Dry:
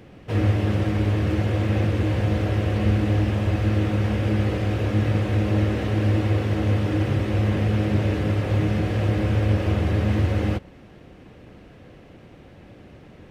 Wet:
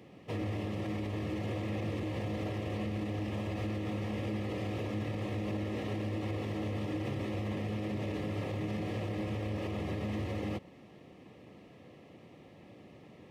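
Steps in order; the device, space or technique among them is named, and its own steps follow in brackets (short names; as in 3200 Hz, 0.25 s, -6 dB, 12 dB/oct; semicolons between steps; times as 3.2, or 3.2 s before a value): PA system with an anti-feedback notch (HPF 130 Hz 12 dB/oct; Butterworth band-stop 1500 Hz, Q 4.4; limiter -21.5 dBFS, peak gain reduction 9 dB); gain -6.5 dB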